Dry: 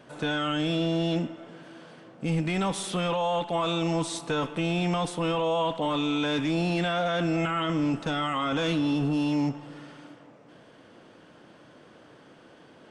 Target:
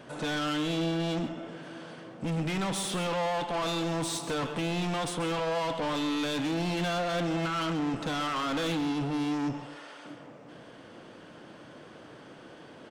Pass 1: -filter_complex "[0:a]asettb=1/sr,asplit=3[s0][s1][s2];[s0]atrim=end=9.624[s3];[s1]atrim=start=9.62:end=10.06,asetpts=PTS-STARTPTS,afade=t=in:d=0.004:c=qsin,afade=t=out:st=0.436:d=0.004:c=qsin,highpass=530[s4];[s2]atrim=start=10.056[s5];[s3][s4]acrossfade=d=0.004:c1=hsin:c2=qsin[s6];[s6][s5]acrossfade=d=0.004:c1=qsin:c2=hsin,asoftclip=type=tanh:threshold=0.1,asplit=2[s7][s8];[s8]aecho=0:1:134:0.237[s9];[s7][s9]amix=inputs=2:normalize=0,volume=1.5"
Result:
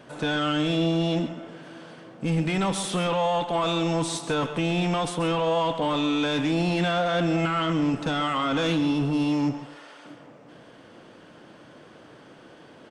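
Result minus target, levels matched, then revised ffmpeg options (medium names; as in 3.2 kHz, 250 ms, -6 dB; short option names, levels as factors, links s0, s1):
saturation: distortion -13 dB
-filter_complex "[0:a]asettb=1/sr,asplit=3[s0][s1][s2];[s0]atrim=end=9.624[s3];[s1]atrim=start=9.62:end=10.06,asetpts=PTS-STARTPTS,afade=t=in:d=0.004:c=qsin,afade=t=out:st=0.436:d=0.004:c=qsin,highpass=530[s4];[s2]atrim=start=10.056[s5];[s3][s4]acrossfade=d=0.004:c1=hsin:c2=qsin[s6];[s6][s5]acrossfade=d=0.004:c1=qsin:c2=hsin,asoftclip=type=tanh:threshold=0.0266,asplit=2[s7][s8];[s8]aecho=0:1:134:0.237[s9];[s7][s9]amix=inputs=2:normalize=0,volume=1.5"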